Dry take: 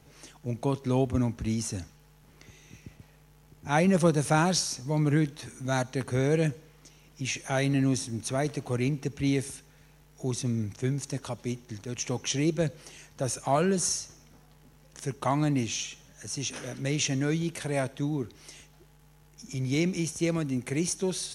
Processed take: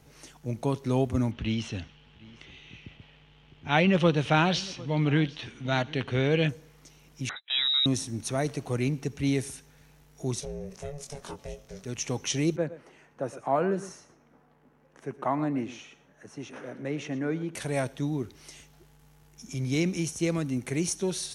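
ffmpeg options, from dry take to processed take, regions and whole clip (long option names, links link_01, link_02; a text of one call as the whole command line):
ffmpeg -i in.wav -filter_complex "[0:a]asettb=1/sr,asplit=3[link_01][link_02][link_03];[link_01]atrim=end=1.314[link_04];[link_02]atrim=start=1.31:end=6.49,asetpts=PTS-STARTPTS,afade=type=in:duration=0.004:curve=qsin,afade=type=out:start_time=5.176:duration=0.004:curve=qsin,lowpass=frequency=3100:width_type=q:width=4.8,aecho=1:1:750:0.0794,atrim=end_sample=228438[link_05];[link_03]atrim=start=6.486[link_06];[link_04][link_05]acrossfade=duration=0.004:curve1=hsin:curve2=qsin[link_07];[link_07][link_06]acrossfade=duration=0.004:curve1=qsin:curve2=hsin,asettb=1/sr,asplit=3[link_08][link_09][link_10];[link_08]atrim=end=7.294[link_11];[link_09]atrim=start=7.29:end=7.86,asetpts=PTS-STARTPTS,afade=type=in:duration=0.004:curve=qsin,afade=type=out:start_time=0.566:duration=0.004:curve=qsin,agate=range=-34dB:threshold=-40dB:ratio=16:release=100:detection=peak,highshelf=frequency=2100:gain=-7,lowpass=frequency=3400:width_type=q:width=0.5098,lowpass=frequency=3400:width_type=q:width=0.6013,lowpass=frequency=3400:width_type=q:width=0.9,lowpass=frequency=3400:width_type=q:width=2.563,afreqshift=-4000[link_12];[link_10]atrim=start=7.856[link_13];[link_11][link_12]acrossfade=duration=0.004:curve1=hsin:curve2=qsin[link_14];[link_14][link_13]acrossfade=duration=0.004:curve1=qsin:curve2=hsin,asettb=1/sr,asplit=3[link_15][link_16][link_17];[link_15]atrim=end=10.404[link_18];[link_16]atrim=start=10.4:end=11.84,asetpts=PTS-STARTPTS,afade=type=in:duration=0.004:curve=qsin,afade=type=out:start_time=1.436:duration=0.004:curve=qsin,aeval=exprs='val(0)*sin(2*PI*290*n/s)':channel_layout=same,acompressor=threshold=-38dB:ratio=2:attack=3.2:release=140:knee=1:detection=peak,asplit=2[link_19][link_20];[link_20]adelay=22,volume=-5dB[link_21];[link_19][link_21]amix=inputs=2:normalize=0,atrim=end_sample=63504[link_22];[link_17]atrim=start=11.836[link_23];[link_18][link_22]acrossfade=duration=0.004:curve1=hsin:curve2=qsin[link_24];[link_24][link_23]acrossfade=duration=0.004:curve1=qsin:curve2=hsin,asettb=1/sr,asplit=3[link_25][link_26][link_27];[link_25]atrim=end=12.564[link_28];[link_26]atrim=start=12.56:end=17.55,asetpts=PTS-STARTPTS,afade=type=in:duration=0.004:curve=qsin,afade=type=out:start_time=4.986:duration=0.004:curve=qsin,acrossover=split=180 2100:gain=0.158 1 0.1[link_29][link_30][link_31];[link_29][link_30][link_31]amix=inputs=3:normalize=0,aecho=1:1:116:0.158,atrim=end_sample=220059[link_32];[link_27]atrim=start=17.546[link_33];[link_28][link_32]acrossfade=duration=0.004:curve1=hsin:curve2=qsin[link_34];[link_34][link_33]acrossfade=duration=0.004:curve1=qsin:curve2=hsin" out.wav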